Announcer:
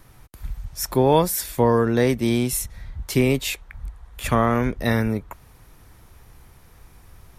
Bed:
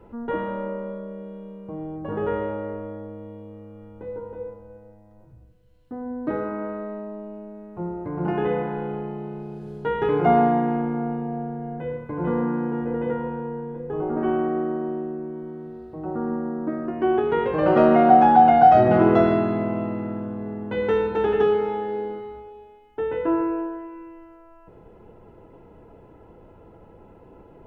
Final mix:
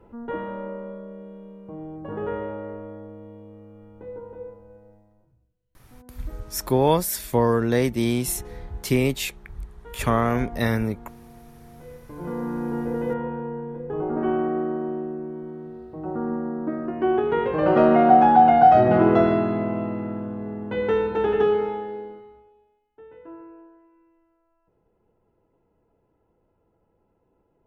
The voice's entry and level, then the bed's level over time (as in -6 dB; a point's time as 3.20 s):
5.75 s, -2.0 dB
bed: 4.96 s -3.5 dB
5.51 s -19 dB
11.49 s -19 dB
12.76 s -0.5 dB
21.62 s -0.5 dB
22.88 s -20 dB